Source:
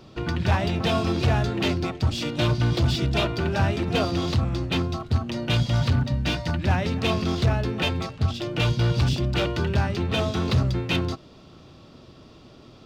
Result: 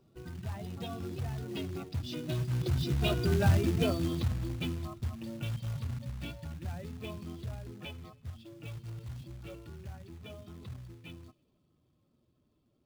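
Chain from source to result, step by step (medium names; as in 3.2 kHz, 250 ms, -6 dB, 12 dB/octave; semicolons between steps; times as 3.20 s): spectral contrast enhancement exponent 1.5; Doppler pass-by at 3.48 s, 14 m/s, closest 4.6 m; dynamic bell 850 Hz, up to -5 dB, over -49 dBFS, Q 1.3; in parallel at +1 dB: compression 5:1, threshold -37 dBFS, peak gain reduction 17.5 dB; on the sum: short-mantissa float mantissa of 2-bit; on a send: feedback echo behind a high-pass 80 ms, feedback 57%, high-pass 2.5 kHz, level -21 dB; on the sum: trim -3 dB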